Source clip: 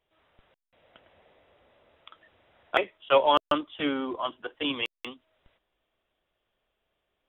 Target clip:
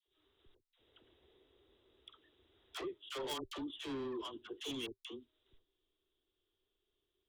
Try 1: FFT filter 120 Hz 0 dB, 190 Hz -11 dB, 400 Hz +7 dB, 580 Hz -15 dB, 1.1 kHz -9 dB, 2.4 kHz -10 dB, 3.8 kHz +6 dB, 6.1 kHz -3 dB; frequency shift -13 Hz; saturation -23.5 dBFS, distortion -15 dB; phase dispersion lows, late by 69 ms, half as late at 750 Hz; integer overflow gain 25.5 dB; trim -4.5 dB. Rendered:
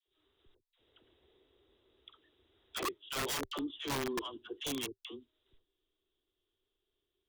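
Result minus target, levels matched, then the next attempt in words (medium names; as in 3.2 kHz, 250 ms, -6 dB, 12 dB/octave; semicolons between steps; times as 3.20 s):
saturation: distortion -8 dB
FFT filter 120 Hz 0 dB, 190 Hz -11 dB, 400 Hz +7 dB, 580 Hz -15 dB, 1.1 kHz -9 dB, 2.4 kHz -10 dB, 3.8 kHz +6 dB, 6.1 kHz -3 dB; frequency shift -13 Hz; saturation -33.5 dBFS, distortion -6 dB; phase dispersion lows, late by 69 ms, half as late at 750 Hz; integer overflow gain 25.5 dB; trim -4.5 dB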